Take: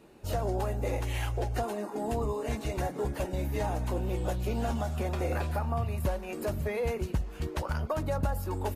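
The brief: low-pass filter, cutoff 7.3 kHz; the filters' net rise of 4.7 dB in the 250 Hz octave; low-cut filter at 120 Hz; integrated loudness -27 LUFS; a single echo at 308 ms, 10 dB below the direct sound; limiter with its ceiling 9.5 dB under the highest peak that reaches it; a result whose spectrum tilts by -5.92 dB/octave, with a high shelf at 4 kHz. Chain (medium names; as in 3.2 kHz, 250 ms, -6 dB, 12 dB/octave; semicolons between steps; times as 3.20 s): high-pass 120 Hz; low-pass 7.3 kHz; peaking EQ 250 Hz +6.5 dB; treble shelf 4 kHz +6 dB; peak limiter -25.5 dBFS; delay 308 ms -10 dB; trim +7.5 dB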